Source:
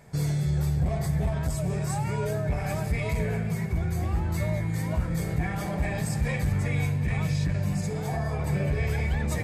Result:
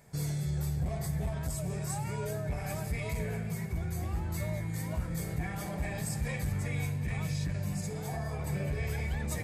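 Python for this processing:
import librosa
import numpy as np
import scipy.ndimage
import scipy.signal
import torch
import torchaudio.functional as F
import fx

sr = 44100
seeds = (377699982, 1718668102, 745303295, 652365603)

y = fx.high_shelf(x, sr, hz=6200.0, db=9.0)
y = F.gain(torch.from_numpy(y), -7.0).numpy()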